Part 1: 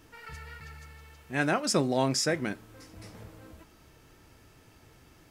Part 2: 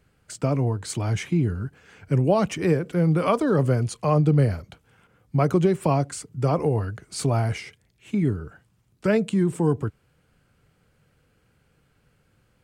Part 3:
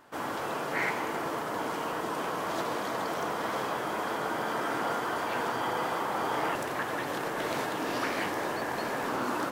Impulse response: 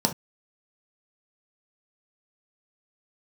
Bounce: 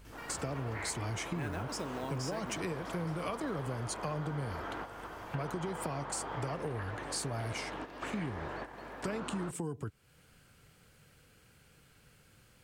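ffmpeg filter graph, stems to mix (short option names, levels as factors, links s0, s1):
-filter_complex "[0:a]acrusher=bits=5:mode=log:mix=0:aa=0.000001,acompressor=threshold=0.0141:ratio=2,adelay=50,volume=1.41[s0];[1:a]highshelf=f=2200:g=9.5,acompressor=threshold=0.0708:ratio=6,volume=1,asplit=2[s1][s2];[2:a]lowpass=3600,aeval=exprs='val(0)+0.00708*(sin(2*PI*50*n/s)+sin(2*PI*2*50*n/s)/2+sin(2*PI*3*50*n/s)/3+sin(2*PI*4*50*n/s)/4+sin(2*PI*5*50*n/s)/5)':c=same,volume=0.841[s3];[s2]apad=whole_len=419603[s4];[s3][s4]sidechaingate=range=0.282:threshold=0.00224:ratio=16:detection=peak[s5];[s0][s1][s5]amix=inputs=3:normalize=0,acompressor=threshold=0.00708:ratio=2"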